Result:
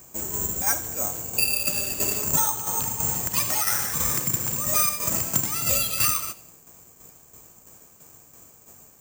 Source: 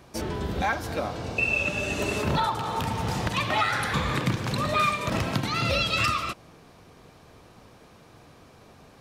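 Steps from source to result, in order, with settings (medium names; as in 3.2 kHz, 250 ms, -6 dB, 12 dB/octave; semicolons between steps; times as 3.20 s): tremolo saw down 3 Hz, depth 55%; on a send: feedback echo behind a high-pass 89 ms, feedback 35%, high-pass 2.1 kHz, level -14 dB; on the sum: careless resampling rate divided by 6×, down filtered, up zero stuff; trim -3.5 dB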